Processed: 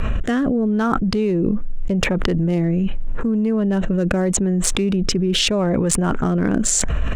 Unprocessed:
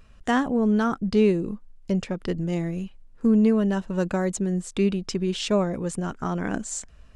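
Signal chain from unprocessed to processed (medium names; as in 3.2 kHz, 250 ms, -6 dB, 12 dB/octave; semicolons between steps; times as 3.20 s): local Wiener filter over 9 samples; rotary cabinet horn 0.8 Hz; level flattener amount 100%; trim -1 dB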